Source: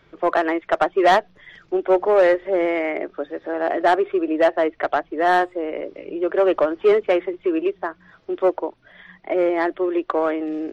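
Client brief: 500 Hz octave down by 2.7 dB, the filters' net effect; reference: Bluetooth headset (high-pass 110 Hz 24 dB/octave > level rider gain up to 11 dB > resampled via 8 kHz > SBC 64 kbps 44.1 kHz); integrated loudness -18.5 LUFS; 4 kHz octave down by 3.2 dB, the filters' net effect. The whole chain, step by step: high-pass 110 Hz 24 dB/octave; peaking EQ 500 Hz -3.5 dB; peaking EQ 4 kHz -4.5 dB; level rider gain up to 11 dB; resampled via 8 kHz; trim +4.5 dB; SBC 64 kbps 44.1 kHz

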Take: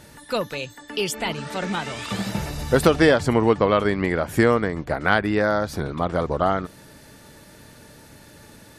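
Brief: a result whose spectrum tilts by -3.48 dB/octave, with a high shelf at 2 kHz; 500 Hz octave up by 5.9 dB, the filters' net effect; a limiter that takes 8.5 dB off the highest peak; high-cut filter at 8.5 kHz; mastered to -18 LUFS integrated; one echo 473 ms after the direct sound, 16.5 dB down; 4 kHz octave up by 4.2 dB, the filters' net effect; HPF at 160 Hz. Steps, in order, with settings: high-pass 160 Hz; low-pass 8.5 kHz; peaking EQ 500 Hz +7 dB; treble shelf 2 kHz -3 dB; peaking EQ 4 kHz +8.5 dB; peak limiter -8 dBFS; delay 473 ms -16.5 dB; trim +3.5 dB

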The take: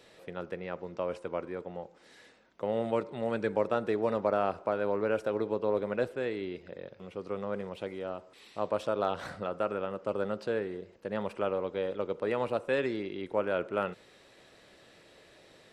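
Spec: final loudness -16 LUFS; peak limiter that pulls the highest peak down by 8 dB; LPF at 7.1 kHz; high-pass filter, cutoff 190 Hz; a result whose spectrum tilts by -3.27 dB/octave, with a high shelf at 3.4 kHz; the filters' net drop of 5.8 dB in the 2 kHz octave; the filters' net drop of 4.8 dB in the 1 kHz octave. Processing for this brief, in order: high-pass 190 Hz; low-pass 7.1 kHz; peaking EQ 1 kHz -5 dB; peaking EQ 2 kHz -4.5 dB; treble shelf 3.4 kHz -5 dB; trim +22 dB; peak limiter -4 dBFS

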